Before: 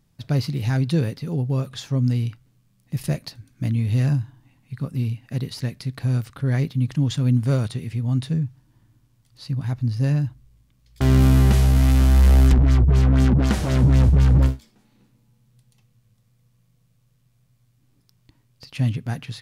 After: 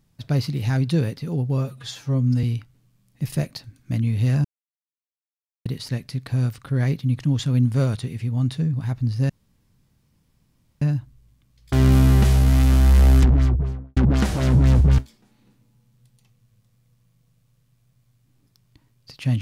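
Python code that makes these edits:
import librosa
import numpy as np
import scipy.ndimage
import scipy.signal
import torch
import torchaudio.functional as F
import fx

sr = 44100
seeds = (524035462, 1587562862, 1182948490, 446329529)

y = fx.studio_fade_out(x, sr, start_s=12.53, length_s=0.72)
y = fx.edit(y, sr, fx.stretch_span(start_s=1.58, length_s=0.57, factor=1.5),
    fx.silence(start_s=4.16, length_s=1.21),
    fx.cut(start_s=8.45, length_s=1.09),
    fx.insert_room_tone(at_s=10.1, length_s=1.52),
    fx.cut(start_s=14.27, length_s=0.25), tone=tone)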